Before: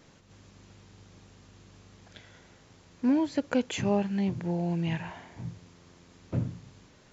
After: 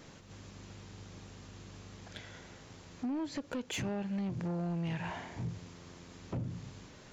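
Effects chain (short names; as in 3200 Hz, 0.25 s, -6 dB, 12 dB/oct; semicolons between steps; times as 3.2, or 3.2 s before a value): compressor 12:1, threshold -33 dBFS, peak gain reduction 13 dB; soft clip -35 dBFS, distortion -13 dB; gain +4 dB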